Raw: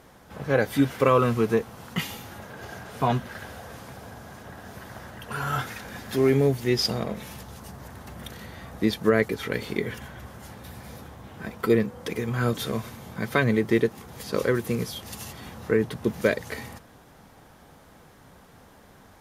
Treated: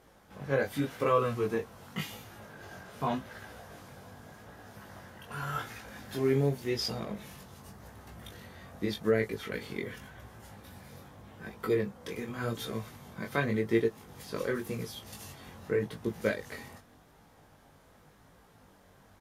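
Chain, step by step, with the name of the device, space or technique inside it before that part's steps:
double-tracked vocal (double-tracking delay 20 ms −10.5 dB; chorus effect 0.87 Hz, delay 17.5 ms, depth 4.5 ms)
level −5 dB

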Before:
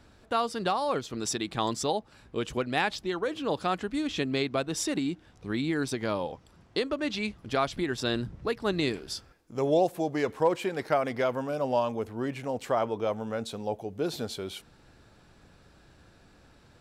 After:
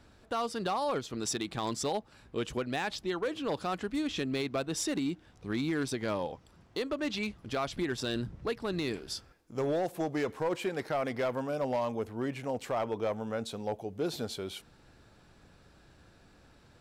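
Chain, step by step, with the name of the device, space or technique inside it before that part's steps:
limiter into clipper (brickwall limiter −19 dBFS, peak gain reduction 5.5 dB; hard clipping −23 dBFS, distortion −19 dB)
level −2 dB

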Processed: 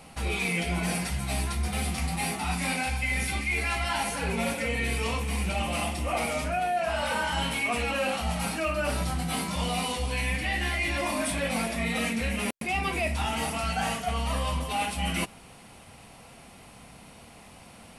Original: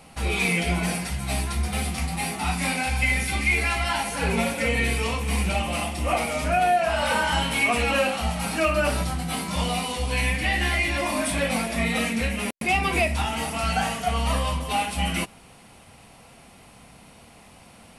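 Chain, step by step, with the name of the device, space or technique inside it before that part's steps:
compression on the reversed sound (reversed playback; downward compressor, threshold −25 dBFS, peak gain reduction 8 dB; reversed playback)

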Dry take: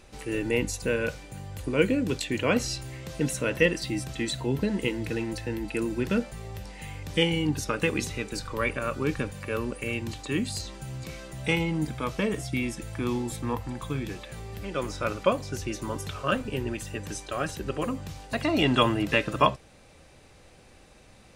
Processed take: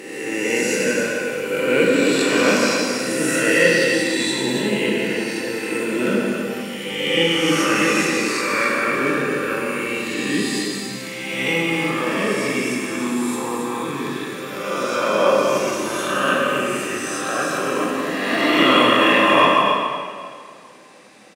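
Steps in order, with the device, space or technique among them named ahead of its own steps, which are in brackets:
peak hold with a rise ahead of every peak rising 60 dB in 1.64 s
stadium PA (high-pass filter 180 Hz 24 dB per octave; parametric band 1,800 Hz +4 dB 0.44 octaves; loudspeakers that aren't time-aligned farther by 57 metres −10 dB, 94 metres −7 dB; convolution reverb RT60 2.0 s, pre-delay 16 ms, DRR −1.5 dB)

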